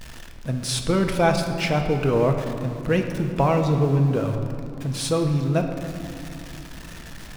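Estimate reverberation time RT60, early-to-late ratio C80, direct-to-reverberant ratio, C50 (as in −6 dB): 2.8 s, 7.0 dB, 4.0 dB, 6.0 dB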